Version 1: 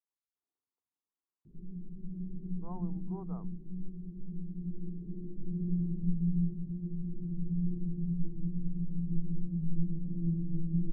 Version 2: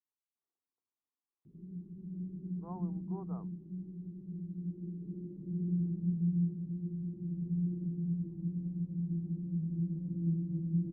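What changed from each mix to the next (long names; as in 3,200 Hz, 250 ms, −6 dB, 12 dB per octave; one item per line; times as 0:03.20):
master: add high-pass filter 87 Hz 12 dB per octave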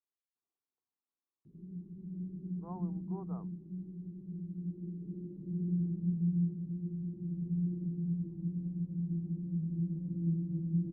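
nothing changed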